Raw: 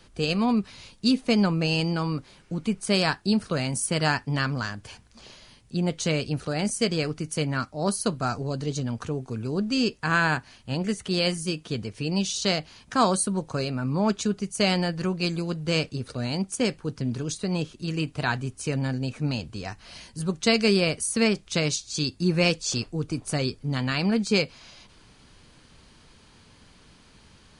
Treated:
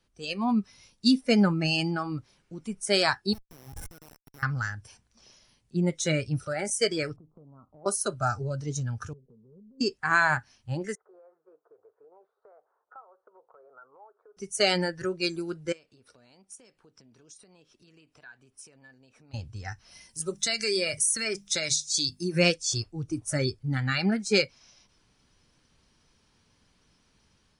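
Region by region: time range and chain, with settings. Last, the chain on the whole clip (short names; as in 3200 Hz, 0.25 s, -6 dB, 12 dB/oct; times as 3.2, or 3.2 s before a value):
3.33–4.43 high shelf 4000 Hz -4 dB + compressor 4:1, threshold -34 dBFS + Schmitt trigger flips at -32 dBFS
7.16–7.86 steep low-pass 1200 Hz 72 dB/oct + compressor 8:1, threshold -37 dBFS
9.13–9.81 rippled Chebyshev low-pass 670 Hz, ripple 3 dB + compressor 12:1, threshold -36 dBFS + fixed phaser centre 450 Hz, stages 8
10.95–14.37 elliptic band-pass 430–1400 Hz + compressor 10:1, threshold -38 dBFS + air absorption 430 m
15.72–19.34 tone controls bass -12 dB, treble -4 dB + compressor 5:1, threshold -43 dBFS + notch 6300 Hz, Q 23
20.09–22.39 high shelf 3200 Hz +7 dB + notches 50/100/150/200/250 Hz + compressor 10:1, threshold -21 dBFS
whole clip: spectral noise reduction 14 dB; AGC gain up to 6 dB; gain -4.5 dB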